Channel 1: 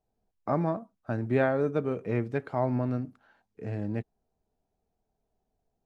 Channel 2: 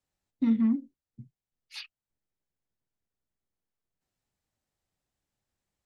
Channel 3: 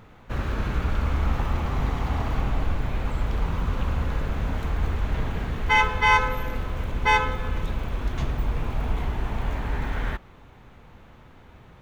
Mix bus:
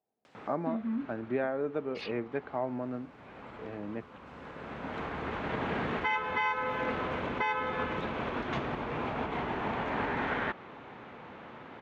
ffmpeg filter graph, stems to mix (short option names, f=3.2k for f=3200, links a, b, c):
-filter_complex "[0:a]volume=-8dB,asplit=2[a][b];[1:a]acompressor=mode=upward:threshold=-40dB:ratio=2.5,alimiter=level_in=2dB:limit=-24dB:level=0:latency=1:release=487,volume=-2dB,adelay=250,volume=-2dB[c];[2:a]acompressor=threshold=-26dB:ratio=6,adelay=350,volume=1.5dB[d];[b]apad=whole_len=536613[e];[d][e]sidechaincompress=threshold=-57dB:ratio=4:attack=16:release=864[f];[a][c][f]amix=inputs=3:normalize=0,acontrast=35,highpass=240,lowpass=2.9k,alimiter=limit=-20.5dB:level=0:latency=1:release=437"